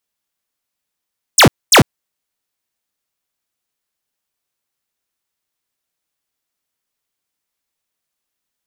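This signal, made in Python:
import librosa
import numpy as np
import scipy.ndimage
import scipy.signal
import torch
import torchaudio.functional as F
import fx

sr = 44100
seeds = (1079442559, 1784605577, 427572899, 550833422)

y = fx.laser_zaps(sr, level_db=-6, start_hz=9900.0, end_hz=81.0, length_s=0.1, wave='square', shots=2, gap_s=0.24)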